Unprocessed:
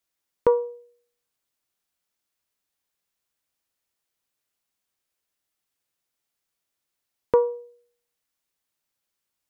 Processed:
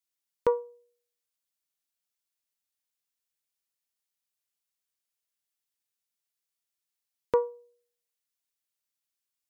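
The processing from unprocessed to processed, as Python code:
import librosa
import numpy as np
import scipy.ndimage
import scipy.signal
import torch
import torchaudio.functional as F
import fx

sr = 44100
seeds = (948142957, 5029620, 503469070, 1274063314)

y = fx.high_shelf(x, sr, hz=2000.0, db=10.0)
y = fx.upward_expand(y, sr, threshold_db=-31.0, expansion=1.5)
y = y * 10.0 ** (-5.5 / 20.0)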